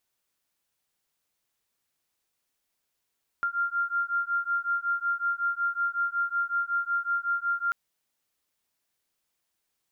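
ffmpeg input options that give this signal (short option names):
-f lavfi -i "aevalsrc='0.0376*(sin(2*PI*1390*t)+sin(2*PI*1395.4*t))':d=4.29:s=44100"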